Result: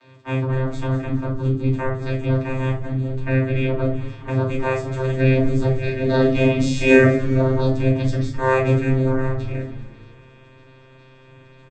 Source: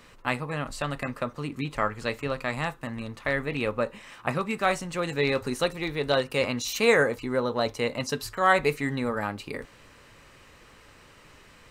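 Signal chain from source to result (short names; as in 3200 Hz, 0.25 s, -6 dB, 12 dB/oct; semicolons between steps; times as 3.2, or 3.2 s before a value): bin magnitudes rounded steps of 30 dB; high shelf 4900 Hz +10.5 dB; vocoder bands 16, saw 131 Hz; 5.84–7.04 doubler 35 ms -2.5 dB; frequency-shifting echo 0.208 s, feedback 54%, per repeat -120 Hz, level -16 dB; harmonic-percussive split harmonic +7 dB; shoebox room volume 140 m³, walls furnished, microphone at 2.7 m; gain -4 dB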